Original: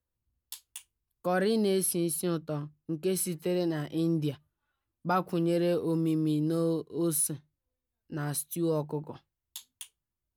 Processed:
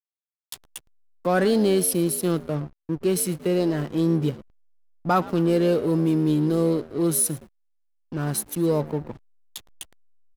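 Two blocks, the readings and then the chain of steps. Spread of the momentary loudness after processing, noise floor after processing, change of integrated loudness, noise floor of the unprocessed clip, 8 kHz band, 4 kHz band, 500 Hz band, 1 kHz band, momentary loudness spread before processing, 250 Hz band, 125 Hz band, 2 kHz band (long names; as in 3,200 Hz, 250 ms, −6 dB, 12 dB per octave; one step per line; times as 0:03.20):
22 LU, below −85 dBFS, +6.5 dB, below −85 dBFS, +6.0 dB, +5.5 dB, +7.0 dB, +7.0 dB, 19 LU, +7.0 dB, +7.0 dB, +6.5 dB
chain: echo with shifted repeats 114 ms, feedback 41%, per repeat +71 Hz, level −17 dB
downward expander −53 dBFS
slack as between gear wheels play −38 dBFS
level +7 dB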